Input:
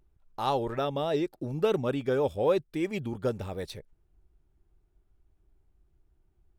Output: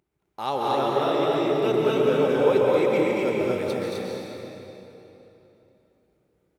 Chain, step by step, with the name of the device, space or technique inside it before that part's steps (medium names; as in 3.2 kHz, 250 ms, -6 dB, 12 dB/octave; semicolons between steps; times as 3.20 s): stadium PA (high-pass 170 Hz 12 dB/octave; peaking EQ 2.2 kHz +5.5 dB 0.31 oct; loudspeakers at several distances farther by 77 m -3 dB, 88 m -3 dB; reverberation RT60 3.3 s, pre-delay 118 ms, DRR -2 dB)